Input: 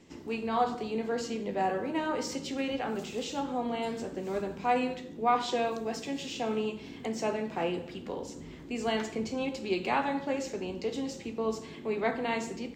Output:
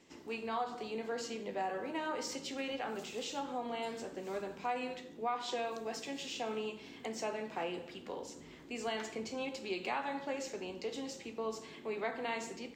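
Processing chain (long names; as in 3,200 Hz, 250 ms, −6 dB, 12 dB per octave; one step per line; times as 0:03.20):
low-shelf EQ 280 Hz −11.5 dB
downward compressor 3 to 1, threshold −31 dBFS, peak gain reduction 7.5 dB
level −2.5 dB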